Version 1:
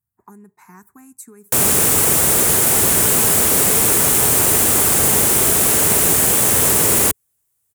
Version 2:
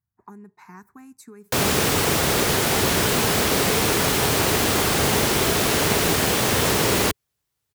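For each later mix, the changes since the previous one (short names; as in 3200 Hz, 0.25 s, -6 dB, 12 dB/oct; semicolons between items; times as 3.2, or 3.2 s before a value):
master: add resonant high shelf 6400 Hz -11 dB, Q 1.5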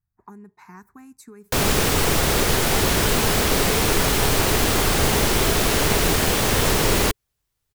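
master: remove HPF 90 Hz 12 dB/oct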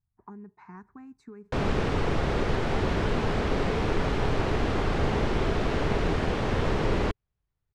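background -4.0 dB; master: add tape spacing loss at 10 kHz 32 dB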